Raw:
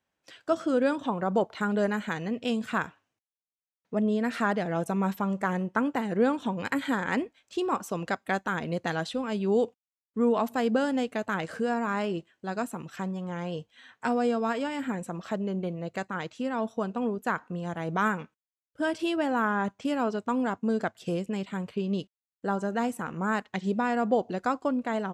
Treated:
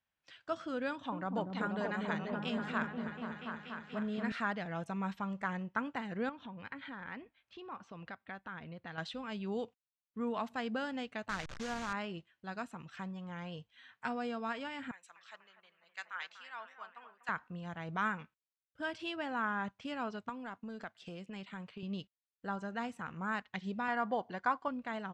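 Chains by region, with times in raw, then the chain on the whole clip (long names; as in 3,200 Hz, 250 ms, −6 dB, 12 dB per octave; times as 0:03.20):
0:00.88–0:04.32: high-pass filter 41 Hz + echo whose low-pass opens from repeat to repeat 241 ms, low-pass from 400 Hz, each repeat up 1 octave, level 0 dB
0:06.29–0:08.98: downward compressor 2 to 1, threshold −36 dBFS + high-frequency loss of the air 190 metres
0:11.29–0:11.93: hold until the input has moved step −31 dBFS + parametric band 6,600 Hz +8.5 dB 0.74 octaves
0:14.91–0:17.29: high-pass filter 1,300 Hz + bucket-brigade delay 245 ms, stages 4,096, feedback 58%, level −8 dB + multiband upward and downward expander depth 100%
0:20.29–0:21.83: high-pass filter 170 Hz + downward compressor 3 to 1, threshold −30 dBFS
0:23.88–0:24.68: low-pass filter 8,000 Hz + parametric band 1,200 Hz +10.5 dB 1.1 octaves + notch comb filter 1,300 Hz
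whole clip: low-pass filter 4,100 Hz 12 dB per octave; parametric band 390 Hz −11.5 dB 2.3 octaves; level −3.5 dB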